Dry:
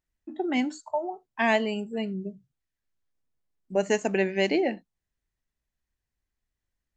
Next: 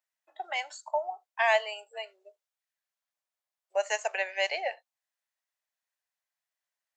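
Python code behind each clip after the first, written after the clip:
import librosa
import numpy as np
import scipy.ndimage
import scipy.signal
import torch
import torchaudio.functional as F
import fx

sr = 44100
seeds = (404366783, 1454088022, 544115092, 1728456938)

y = scipy.signal.sosfilt(scipy.signal.butter(8, 570.0, 'highpass', fs=sr, output='sos'), x)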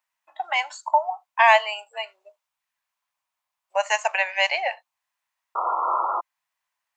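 y = fx.spec_paint(x, sr, seeds[0], shape='noise', start_s=5.55, length_s=0.66, low_hz=330.0, high_hz=1400.0, level_db=-35.0)
y = fx.graphic_eq_15(y, sr, hz=(400, 1000, 2500), db=(-12, 12, 5))
y = y * librosa.db_to_amplitude(4.5)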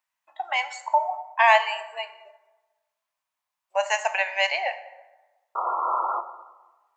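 y = fx.rev_plate(x, sr, seeds[1], rt60_s=1.2, hf_ratio=0.55, predelay_ms=0, drr_db=9.5)
y = y * librosa.db_to_amplitude(-2.0)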